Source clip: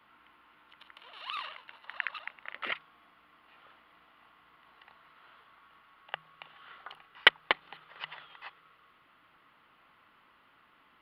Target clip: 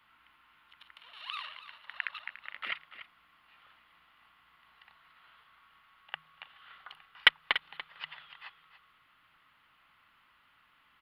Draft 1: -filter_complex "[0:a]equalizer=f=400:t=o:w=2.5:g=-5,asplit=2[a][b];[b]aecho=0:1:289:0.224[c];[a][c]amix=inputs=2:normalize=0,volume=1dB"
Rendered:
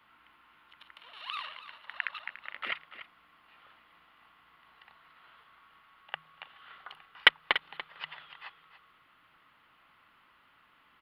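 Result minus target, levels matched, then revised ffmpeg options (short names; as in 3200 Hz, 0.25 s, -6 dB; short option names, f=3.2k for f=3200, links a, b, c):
500 Hz band +5.0 dB
-filter_complex "[0:a]equalizer=f=400:t=o:w=2.5:g=-12.5,asplit=2[a][b];[b]aecho=0:1:289:0.224[c];[a][c]amix=inputs=2:normalize=0,volume=1dB"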